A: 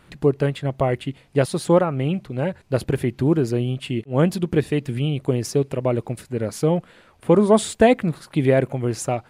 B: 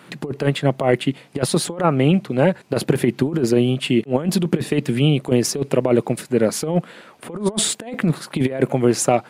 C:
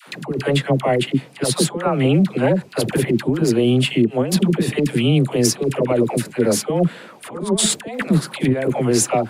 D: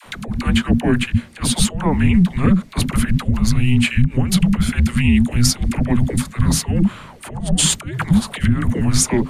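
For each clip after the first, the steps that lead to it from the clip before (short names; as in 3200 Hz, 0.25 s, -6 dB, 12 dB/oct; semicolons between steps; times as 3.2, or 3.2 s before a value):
HPF 150 Hz 24 dB/oct; negative-ratio compressor -22 dBFS, ratio -0.5; gain +5.5 dB
limiter -10 dBFS, peak gain reduction 8 dB; dispersion lows, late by 79 ms, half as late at 640 Hz; gain +3.5 dB
frequency shift -370 Hz; gain +2 dB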